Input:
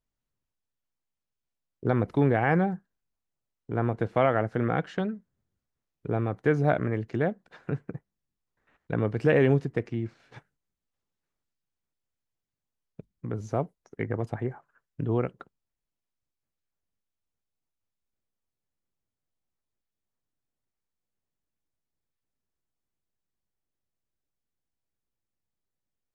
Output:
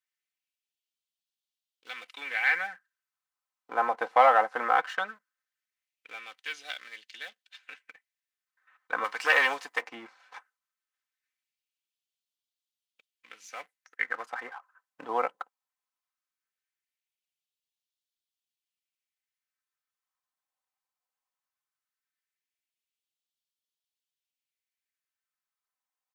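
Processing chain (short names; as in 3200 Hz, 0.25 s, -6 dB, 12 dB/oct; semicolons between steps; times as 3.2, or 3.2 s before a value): low shelf 89 Hz -8.5 dB; comb 3.9 ms, depth 59%; sample leveller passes 1; 9.04–9.82 tilt shelf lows -9.5 dB, about 1100 Hz; LFO high-pass sine 0.18 Hz 870–3400 Hz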